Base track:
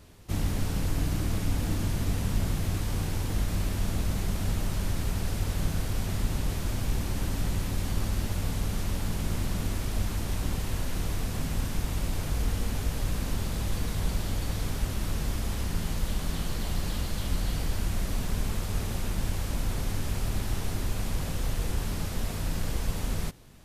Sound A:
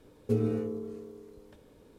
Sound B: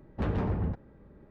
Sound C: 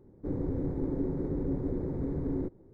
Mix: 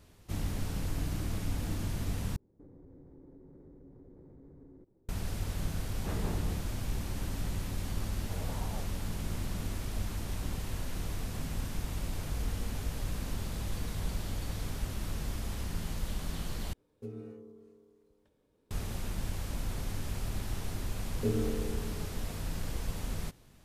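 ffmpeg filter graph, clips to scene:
-filter_complex "[2:a]asplit=2[s0][s1];[1:a]asplit=2[s2][s3];[0:a]volume=0.501[s4];[3:a]acompressor=threshold=0.0112:ratio=6:attack=3.2:release=140:knee=1:detection=peak[s5];[s0]volume=26.6,asoftclip=hard,volume=0.0376[s6];[s1]aeval=exprs='val(0)*sin(2*PI*680*n/s+680*0.25/1.9*sin(2*PI*1.9*n/s))':c=same[s7];[s4]asplit=3[s8][s9][s10];[s8]atrim=end=2.364[s11];[s5]atrim=end=2.73,asetpts=PTS-STARTPTS,volume=0.251[s12];[s9]atrim=start=5.086:end=16.734[s13];[s2]atrim=end=1.98,asetpts=PTS-STARTPTS,volume=0.168[s14];[s10]atrim=start=18.706[s15];[s6]atrim=end=1.3,asetpts=PTS-STARTPTS,volume=0.531,afade=t=in:d=0.004:c=hsin,afade=t=out:st=1.296:d=0.004:c=hsin,adelay=5860[s16];[s7]atrim=end=1.3,asetpts=PTS-STARTPTS,volume=0.168,afade=t=in:d=0.004:c=hsin,afade=t=out:st=1.296:d=0.004:c=hsin,adelay=8120[s17];[s3]atrim=end=1.98,asetpts=PTS-STARTPTS,volume=0.668,afade=t=in:d=0.004:c=hsin,afade=t=out:st=1.976:d=0.004:c=hsin,adelay=20940[s18];[s11][s12]acrossfade=d=0.004:c1=hsin:c2=hsin[s19];[s19][s13]acrossfade=d=0.004:c1=hsin:c2=hsin[s20];[s20][s14]acrossfade=d=0.004:c1=hsin:c2=hsin[s21];[s21][s15]acrossfade=d=0.004:c1=hsin:c2=hsin[s22];[s22][s16][s17][s18]amix=inputs=4:normalize=0"

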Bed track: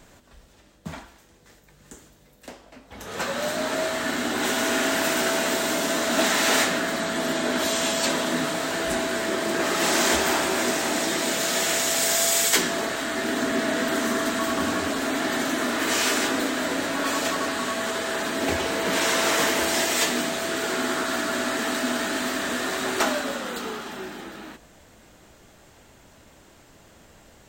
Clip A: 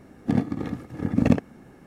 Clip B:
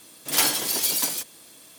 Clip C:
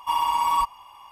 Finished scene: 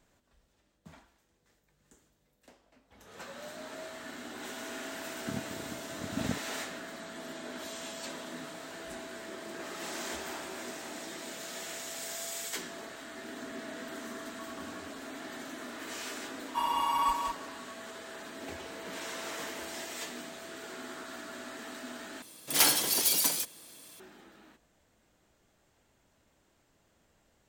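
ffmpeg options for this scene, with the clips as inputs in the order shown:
-filter_complex "[0:a]volume=0.133[s0];[3:a]aecho=1:1:188:0.562[s1];[s0]asplit=2[s2][s3];[s2]atrim=end=22.224[s4];[2:a]atrim=end=1.78,asetpts=PTS-STARTPTS,volume=0.708[s5];[s3]atrim=start=23.996[s6];[1:a]atrim=end=1.86,asetpts=PTS-STARTPTS,volume=0.168,afade=t=in:d=0.004:c=hsin,afade=t=out:st=1.856:d=0.004:c=hsin,adelay=4990[s7];[s1]atrim=end=1.11,asetpts=PTS-STARTPTS,volume=0.422,afade=t=in:d=0.004:c=hsin,afade=t=out:st=1.106:d=0.004:c=hsin,adelay=16480[s8];[s4][s5]acrossfade=d=0.004:c1=hsin:c2=hsin[s9];[s9][s6]acrossfade=d=0.004:c1=hsin:c2=hsin[s10];[s10][s7][s8]amix=inputs=3:normalize=0"

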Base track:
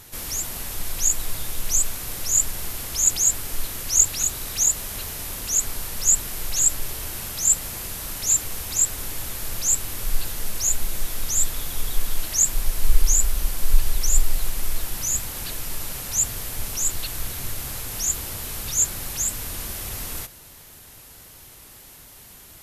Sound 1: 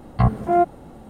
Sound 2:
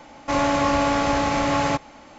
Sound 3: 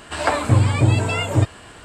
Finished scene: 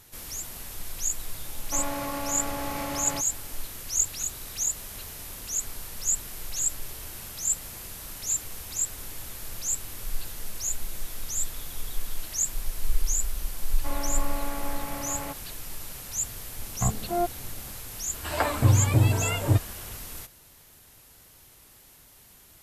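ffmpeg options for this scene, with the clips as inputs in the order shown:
-filter_complex "[2:a]asplit=2[s0][s1];[0:a]volume=0.398[s2];[s0]alimiter=limit=0.178:level=0:latency=1:release=72[s3];[s1]lowpass=3200[s4];[3:a]equalizer=f=76:w=1.5:g=5[s5];[s3]atrim=end=2.18,asetpts=PTS-STARTPTS,volume=0.355,afade=t=in:d=0.004:c=hsin,afade=t=out:st=2.176:d=0.004:c=hsin,adelay=1440[s6];[s4]atrim=end=2.18,asetpts=PTS-STARTPTS,volume=0.188,afade=t=in:d=0.004:c=hsin,afade=t=out:st=2.176:d=0.004:c=hsin,adelay=13560[s7];[1:a]atrim=end=1.09,asetpts=PTS-STARTPTS,volume=0.335,afade=t=in:d=0.004:c=hsin,afade=t=out:st=1.086:d=0.004:c=hsin,adelay=16620[s8];[s5]atrim=end=1.84,asetpts=PTS-STARTPTS,volume=0.473,afade=t=in:d=0.004:c=hsin,afade=t=out:st=1.836:d=0.004:c=hsin,adelay=18130[s9];[s2][s6][s7][s8][s9]amix=inputs=5:normalize=0"

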